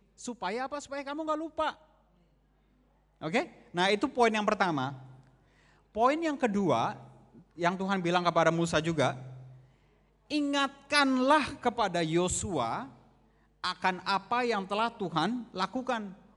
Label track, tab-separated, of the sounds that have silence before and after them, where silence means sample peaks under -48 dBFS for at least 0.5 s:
3.210000	5.190000	sound
5.950000	9.570000	sound
10.300000	12.990000	sound